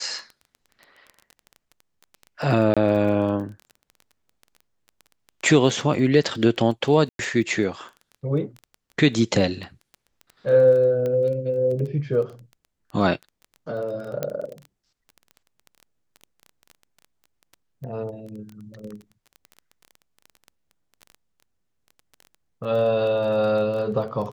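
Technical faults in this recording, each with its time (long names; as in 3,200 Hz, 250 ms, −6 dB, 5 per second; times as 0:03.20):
surface crackle 15 per second −31 dBFS
0:02.74–0:02.77: drop-out 26 ms
0:07.09–0:07.19: drop-out 102 ms
0:11.06: click −17 dBFS
0:14.23: click −12 dBFS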